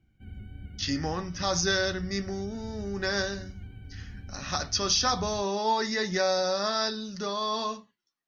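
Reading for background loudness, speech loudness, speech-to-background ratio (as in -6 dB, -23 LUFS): -44.0 LUFS, -28.5 LUFS, 15.5 dB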